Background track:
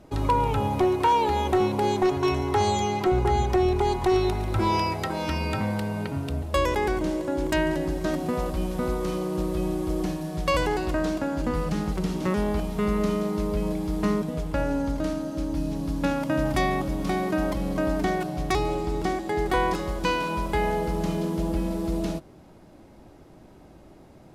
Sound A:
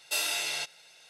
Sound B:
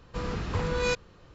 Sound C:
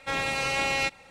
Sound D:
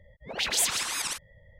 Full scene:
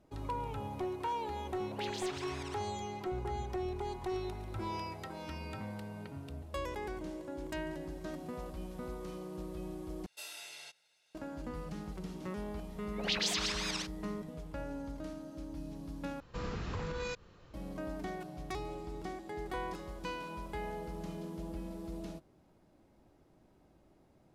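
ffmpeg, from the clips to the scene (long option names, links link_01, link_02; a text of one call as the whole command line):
ffmpeg -i bed.wav -i cue0.wav -i cue1.wav -i cue2.wav -i cue3.wav -filter_complex "[4:a]asplit=2[link_01][link_02];[0:a]volume=-15.5dB[link_03];[link_01]adynamicsmooth=sensitivity=1:basefreq=4000[link_04];[link_02]highshelf=frequency=7100:width_type=q:width=1.5:gain=-12.5[link_05];[2:a]alimiter=level_in=1dB:limit=-24dB:level=0:latency=1:release=113,volume=-1dB[link_06];[link_03]asplit=3[link_07][link_08][link_09];[link_07]atrim=end=10.064[link_10];[1:a]atrim=end=1.09,asetpts=PTS-STARTPTS,volume=-17dB[link_11];[link_08]atrim=start=11.146:end=16.204[link_12];[link_06]atrim=end=1.34,asetpts=PTS-STARTPTS,volume=-4.5dB[link_13];[link_09]atrim=start=17.536[link_14];[link_04]atrim=end=1.59,asetpts=PTS-STARTPTS,volume=-13dB,afade=type=in:duration=0.004:curve=hsin,afade=type=out:start_time=1.586:duration=0.004:curve=hsin,adelay=1410[link_15];[link_05]atrim=end=1.59,asetpts=PTS-STARTPTS,volume=-6dB,afade=type=in:duration=0.004:curve=hsin,afade=type=out:start_time=1.586:duration=0.004:curve=hsin,adelay=12690[link_16];[link_10][link_11]acrossfade=duration=0.004:curve1=hsin:curve2=hsin[link_17];[link_17][link_12]acrossfade=duration=0.004:curve1=hsin:curve2=hsin[link_18];[link_18][link_13]acrossfade=duration=0.004:curve1=hsin:curve2=hsin[link_19];[link_19][link_14]acrossfade=duration=0.004:curve1=hsin:curve2=hsin[link_20];[link_20][link_15][link_16]amix=inputs=3:normalize=0" out.wav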